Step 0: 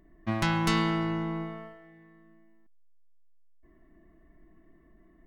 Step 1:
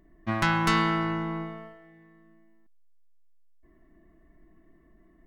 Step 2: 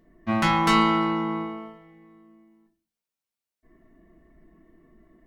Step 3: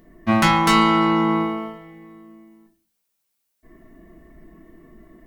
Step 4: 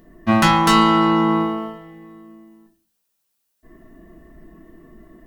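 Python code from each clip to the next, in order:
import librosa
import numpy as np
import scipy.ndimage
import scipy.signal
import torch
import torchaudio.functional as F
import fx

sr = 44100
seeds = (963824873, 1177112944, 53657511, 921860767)

y1 = fx.dynamic_eq(x, sr, hz=1400.0, q=1.1, threshold_db=-44.0, ratio=4.0, max_db=7)
y2 = fx.highpass(y1, sr, hz=58.0, slope=6)
y2 = fx.room_shoebox(y2, sr, seeds[0], volume_m3=140.0, walls='furnished', distance_m=1.6)
y3 = fx.high_shelf(y2, sr, hz=7900.0, db=8.5)
y3 = fx.rider(y3, sr, range_db=3, speed_s=0.5)
y3 = y3 * 10.0 ** (6.0 / 20.0)
y4 = fx.notch(y3, sr, hz=2200.0, q=11.0)
y4 = y4 * 10.0 ** (2.0 / 20.0)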